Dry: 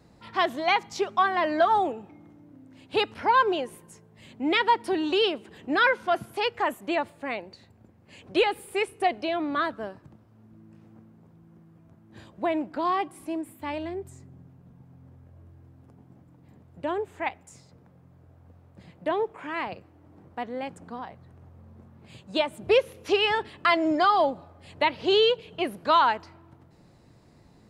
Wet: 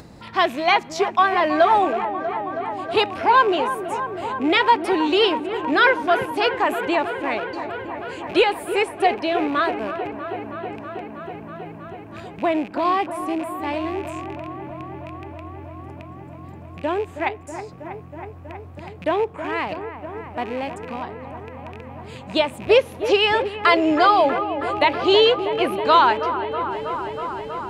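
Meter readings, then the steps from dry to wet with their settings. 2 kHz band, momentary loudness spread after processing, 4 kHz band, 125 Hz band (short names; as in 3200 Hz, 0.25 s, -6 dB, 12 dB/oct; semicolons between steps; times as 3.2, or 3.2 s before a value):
+6.0 dB, 20 LU, +5.5 dB, +9.5 dB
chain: rattling part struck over -45 dBFS, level -34 dBFS; upward compressor, threshold -41 dBFS; on a send: dark delay 0.321 s, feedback 83%, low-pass 1800 Hz, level -10.5 dB; on the sum: gain +5.5 dB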